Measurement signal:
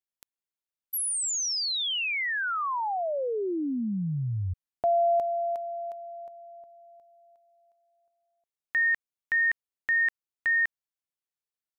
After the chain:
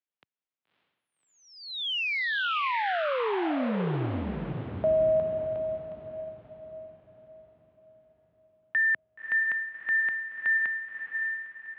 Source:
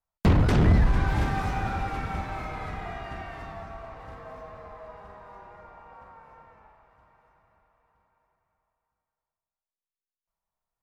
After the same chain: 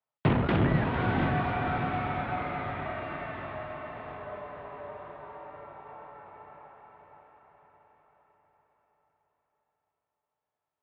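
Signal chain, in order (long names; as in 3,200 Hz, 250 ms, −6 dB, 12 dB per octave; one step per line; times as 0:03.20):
feedback delay with all-pass diffusion 577 ms, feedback 45%, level −5 dB
single-sideband voice off tune −52 Hz 160–3,500 Hz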